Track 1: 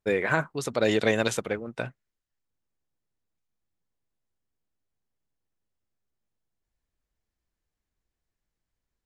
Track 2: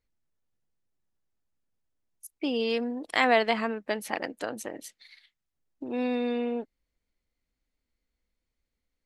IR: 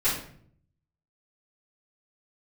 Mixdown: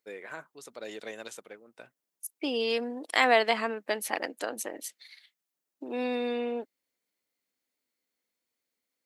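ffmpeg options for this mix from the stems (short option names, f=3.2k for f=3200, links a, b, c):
-filter_complex "[0:a]volume=-16.5dB[a];[1:a]volume=0dB[b];[a][b]amix=inputs=2:normalize=0,highpass=290,crystalizer=i=1:c=0"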